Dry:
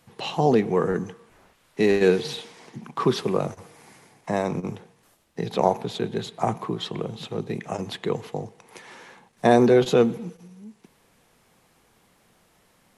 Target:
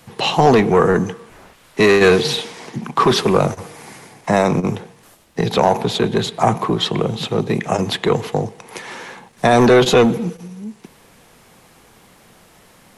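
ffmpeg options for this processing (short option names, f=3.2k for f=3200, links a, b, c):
-filter_complex "[0:a]acrossover=split=700|1800[a][b][c];[a]asoftclip=type=tanh:threshold=-23dB[d];[d][b][c]amix=inputs=3:normalize=0,alimiter=level_in=13.5dB:limit=-1dB:release=50:level=0:latency=1,volume=-1dB"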